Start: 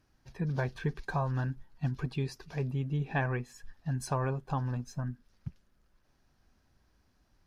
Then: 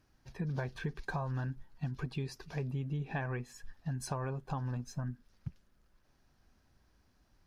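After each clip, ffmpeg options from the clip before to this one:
-af "acompressor=threshold=-33dB:ratio=6"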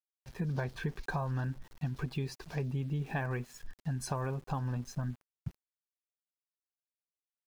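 -af "aeval=exprs='val(0)*gte(abs(val(0)),0.00188)':c=same,volume=2dB"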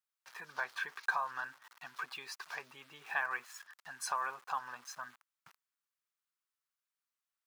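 -af "highpass=f=1.2k:t=q:w=2.3,volume=1.5dB"

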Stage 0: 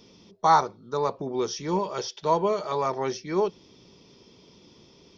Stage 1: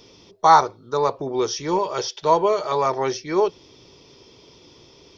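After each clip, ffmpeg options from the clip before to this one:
-af "equalizer=f=200:w=2.7:g=-12,volume=6dB"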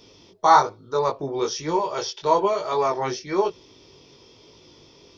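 -af "flanger=delay=18.5:depth=3.5:speed=1.1,volume=1.5dB"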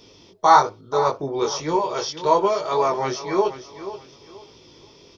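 -af "aecho=1:1:482|964|1446:0.224|0.0627|0.0176,volume=1.5dB"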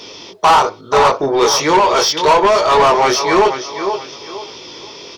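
-filter_complex "[0:a]alimiter=limit=-8.5dB:level=0:latency=1:release=385,asplit=2[a][b];[b]highpass=f=720:p=1,volume=20dB,asoftclip=type=tanh:threshold=-8.5dB[c];[a][c]amix=inputs=2:normalize=0,lowpass=f=6k:p=1,volume=-6dB,volume=5dB"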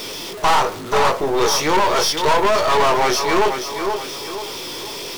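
-af "aeval=exprs='val(0)+0.5*0.0841*sgn(val(0))':c=same,aeval=exprs='(tanh(3.16*val(0)+0.7)-tanh(0.7))/3.16':c=same,volume=-1.5dB"

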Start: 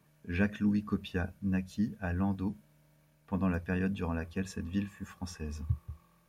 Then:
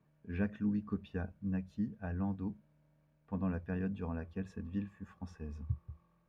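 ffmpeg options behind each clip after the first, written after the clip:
-af "lowpass=f=1.1k:p=1,volume=-4.5dB"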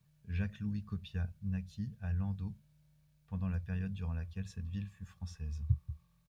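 -af "firequalizer=gain_entry='entry(130,0);entry(270,-22);entry(470,-16);entry(3800,4)':delay=0.05:min_phase=1,volume=6dB"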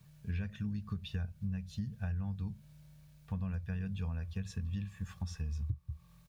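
-af "acompressor=threshold=-45dB:ratio=6,volume=10.5dB"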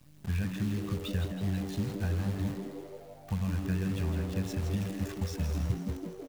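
-filter_complex "[0:a]acrusher=bits=9:dc=4:mix=0:aa=0.000001,asplit=2[a][b];[b]asplit=8[c][d][e][f][g][h][i][j];[c]adelay=163,afreqshift=99,volume=-8dB[k];[d]adelay=326,afreqshift=198,volume=-12.2dB[l];[e]adelay=489,afreqshift=297,volume=-16.3dB[m];[f]adelay=652,afreqshift=396,volume=-20.5dB[n];[g]adelay=815,afreqshift=495,volume=-24.6dB[o];[h]adelay=978,afreqshift=594,volume=-28.8dB[p];[i]adelay=1141,afreqshift=693,volume=-32.9dB[q];[j]adelay=1304,afreqshift=792,volume=-37.1dB[r];[k][l][m][n][o][p][q][r]amix=inputs=8:normalize=0[s];[a][s]amix=inputs=2:normalize=0,volume=5dB"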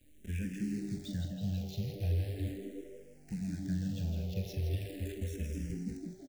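-filter_complex "[0:a]asuperstop=centerf=1100:order=4:qfactor=0.89,asplit=2[a][b];[b]adelay=45,volume=-10.5dB[c];[a][c]amix=inputs=2:normalize=0,asplit=2[d][e];[e]afreqshift=-0.39[f];[d][f]amix=inputs=2:normalize=1,volume=-1.5dB"

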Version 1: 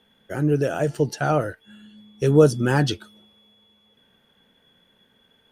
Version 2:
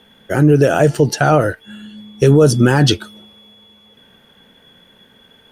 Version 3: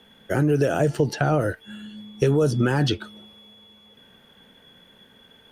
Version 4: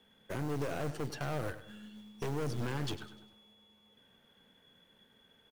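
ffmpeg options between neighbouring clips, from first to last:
-af "alimiter=level_in=13dB:limit=-1dB:release=50:level=0:latency=1,volume=-1dB"
-filter_complex "[0:a]acrossover=split=500|4200[a][b][c];[a]acompressor=threshold=-15dB:ratio=4[d];[b]acompressor=threshold=-21dB:ratio=4[e];[c]acompressor=threshold=-40dB:ratio=4[f];[d][e][f]amix=inputs=3:normalize=0,volume=-4dB"
-filter_complex "[0:a]aeval=exprs='(tanh(17.8*val(0)+0.7)-tanh(0.7))/17.8':c=same,acrossover=split=1200[a][b];[a]acrusher=bits=4:mode=log:mix=0:aa=0.000001[c];[c][b]amix=inputs=2:normalize=0,aecho=1:1:100|200|300|400:0.224|0.094|0.0395|0.0166,volume=-8.5dB"

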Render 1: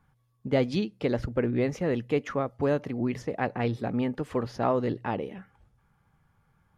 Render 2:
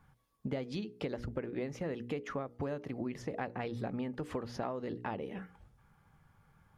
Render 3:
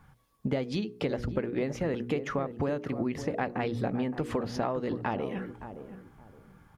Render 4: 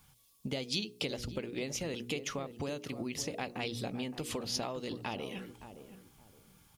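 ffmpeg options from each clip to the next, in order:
-af "bandreject=f=60:t=h:w=6,bandreject=f=120:t=h:w=6,bandreject=f=180:t=h:w=6,bandreject=f=240:t=h:w=6,bandreject=f=300:t=h:w=6,bandreject=f=360:t=h:w=6,bandreject=f=420:t=h:w=6,bandreject=f=480:t=h:w=6,acompressor=threshold=-36dB:ratio=12,volume=2dB"
-filter_complex "[0:a]asplit=2[a][b];[b]adelay=568,lowpass=f=940:p=1,volume=-10dB,asplit=2[c][d];[d]adelay=568,lowpass=f=940:p=1,volume=0.26,asplit=2[e][f];[f]adelay=568,lowpass=f=940:p=1,volume=0.26[g];[a][c][e][g]amix=inputs=4:normalize=0,volume=7dB"
-af "aexciter=amount=5.9:drive=6:freq=2.5k,volume=-8dB"

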